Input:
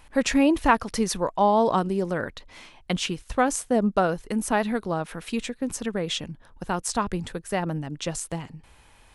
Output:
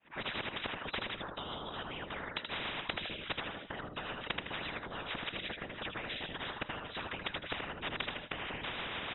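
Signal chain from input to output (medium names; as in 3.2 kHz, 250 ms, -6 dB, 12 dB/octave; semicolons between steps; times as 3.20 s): fade-in on the opening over 1.98 s; level-controlled noise filter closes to 2.4 kHz, open at -19 dBFS; tilt EQ +1.5 dB/octave; comb 4.2 ms, depth 58%; peak limiter -18 dBFS, peak gain reduction 11.5 dB; inverted gate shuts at -25 dBFS, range -26 dB; FFT band-pass 130–3800 Hz; whisper effect; rotary cabinet horn 7 Hz; feedback delay 79 ms, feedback 21%, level -11 dB; on a send at -18 dB: reverberation RT60 0.30 s, pre-delay 3 ms; on the sum: spectrum-flattening compressor 10:1; trim +7.5 dB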